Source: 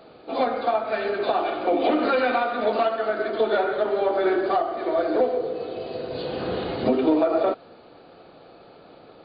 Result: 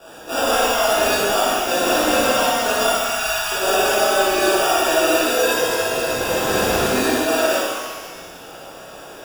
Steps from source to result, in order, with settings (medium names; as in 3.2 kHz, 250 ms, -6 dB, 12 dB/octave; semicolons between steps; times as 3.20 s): 1.14–3.17 s: time-frequency box 220–2300 Hz -7 dB; sample-and-hold 21×; peaking EQ 140 Hz -9 dB 2.3 oct; compressor with a negative ratio -26 dBFS, ratio -0.5; 2.90–3.52 s: inverse Chebyshev band-stop 220–520 Hz, stop band 40 dB; flutter echo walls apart 10.2 m, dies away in 0.48 s; pitch-shifted reverb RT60 1.3 s, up +12 st, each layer -8 dB, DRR -8.5 dB